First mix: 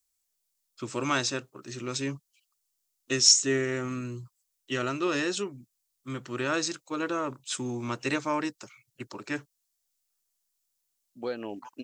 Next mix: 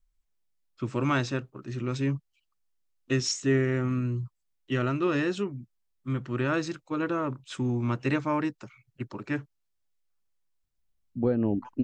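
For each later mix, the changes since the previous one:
second voice: add spectral tilt −4.5 dB per octave
master: add bass and treble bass +10 dB, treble −15 dB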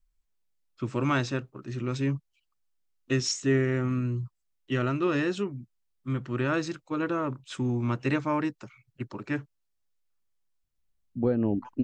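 nothing changed

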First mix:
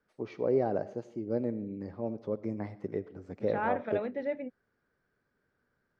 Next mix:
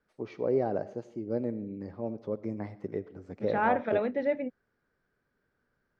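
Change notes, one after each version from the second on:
second voice +5.0 dB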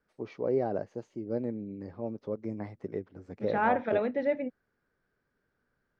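reverb: off

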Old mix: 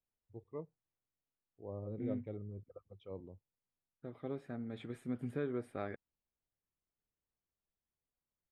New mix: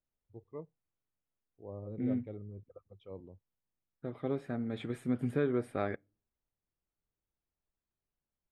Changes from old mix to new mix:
second voice +5.5 dB
reverb: on, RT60 0.35 s

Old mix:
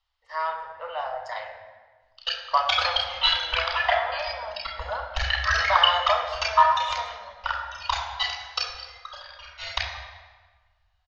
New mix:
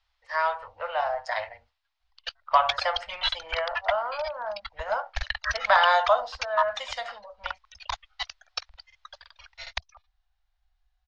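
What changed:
speech +5.5 dB
reverb: off

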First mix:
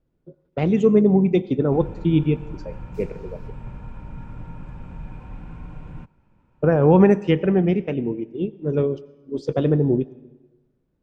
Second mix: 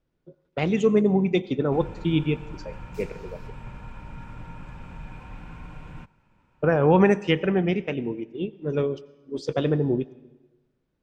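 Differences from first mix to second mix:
background: send on
master: add tilt shelving filter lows −5.5 dB, about 930 Hz

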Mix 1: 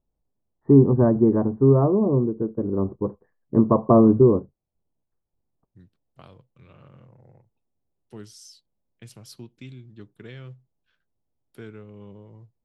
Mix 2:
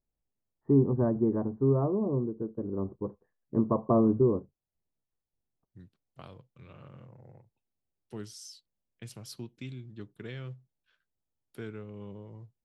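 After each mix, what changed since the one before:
first voice −9.0 dB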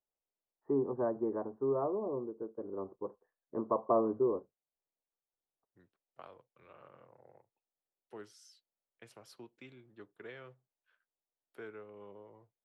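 master: add three-way crossover with the lows and the highs turned down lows −21 dB, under 380 Hz, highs −14 dB, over 2,200 Hz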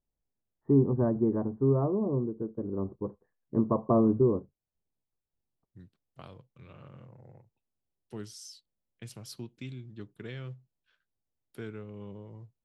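master: remove three-way crossover with the lows and the highs turned down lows −21 dB, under 380 Hz, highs −14 dB, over 2,200 Hz

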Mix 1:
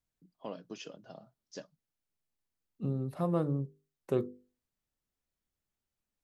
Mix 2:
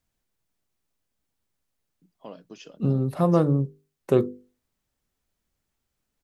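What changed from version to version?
first voice: entry +1.80 s
second voice +10.5 dB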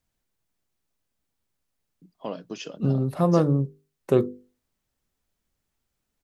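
first voice +8.5 dB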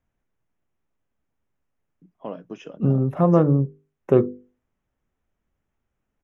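second voice +3.5 dB
master: add moving average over 10 samples

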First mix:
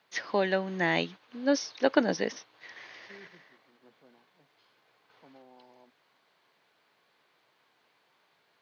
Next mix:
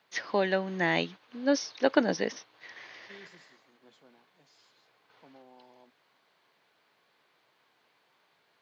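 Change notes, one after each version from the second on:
second voice: remove low-pass filter 1,400 Hz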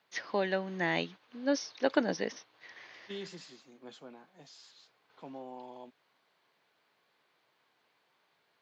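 first voice −4.0 dB
second voice +10.5 dB

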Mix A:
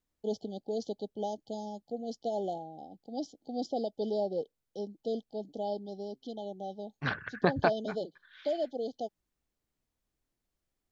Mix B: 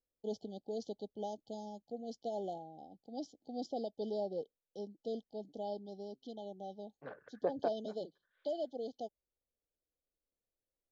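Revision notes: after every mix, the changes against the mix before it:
first voice −6.0 dB
second voice: add resonant band-pass 510 Hz, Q 4.6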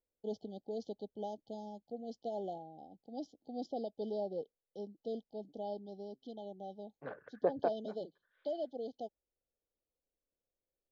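second voice +3.5 dB
master: add high-frequency loss of the air 110 metres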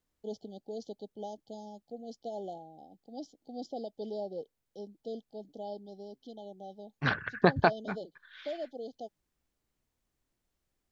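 second voice: remove resonant band-pass 510 Hz, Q 4.6
master: remove high-frequency loss of the air 110 metres

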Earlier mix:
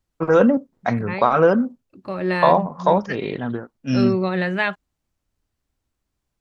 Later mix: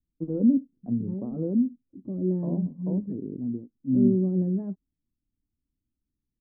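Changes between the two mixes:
second voice +6.0 dB
master: add transistor ladder low-pass 320 Hz, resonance 50%

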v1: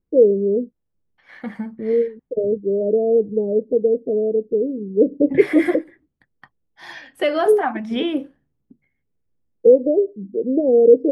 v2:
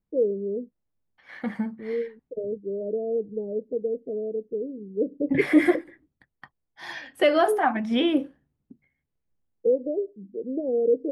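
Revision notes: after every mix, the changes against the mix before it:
first voice −10.5 dB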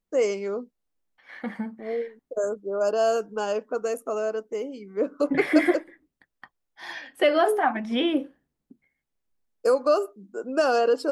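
first voice: remove elliptic low-pass filter 500 Hz, stop band 60 dB
master: add parametric band 100 Hz −14.5 dB 1.2 octaves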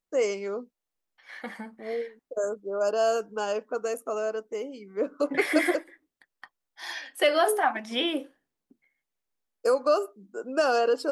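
second voice: add bass and treble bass −9 dB, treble +9 dB
master: add low-shelf EQ 490 Hz −5 dB

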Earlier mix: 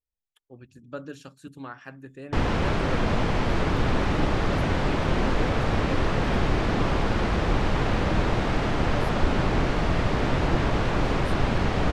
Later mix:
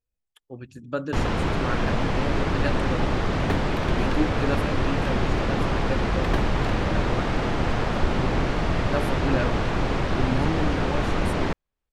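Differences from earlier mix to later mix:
speech +8.0 dB
first sound: entry −1.20 s
second sound +10.5 dB

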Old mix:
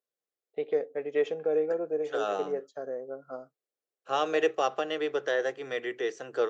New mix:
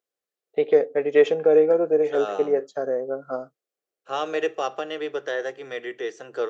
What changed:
first voice +10.5 dB
reverb: on, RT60 0.50 s

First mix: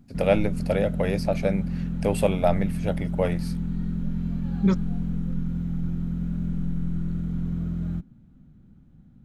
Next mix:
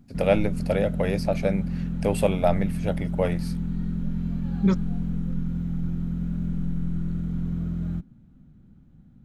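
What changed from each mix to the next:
nothing changed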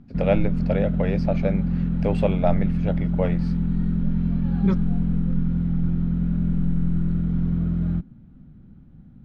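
background +5.5 dB
master: add high-frequency loss of the air 180 metres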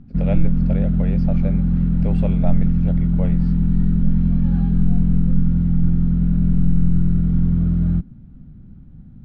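first voice −7.5 dB
second voice: muted
master: add low-shelf EQ 170 Hz +9 dB

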